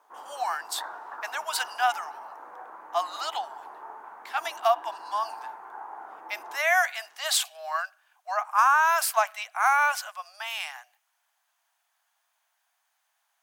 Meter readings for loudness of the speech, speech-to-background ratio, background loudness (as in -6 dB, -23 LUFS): -27.0 LUFS, 15.5 dB, -42.5 LUFS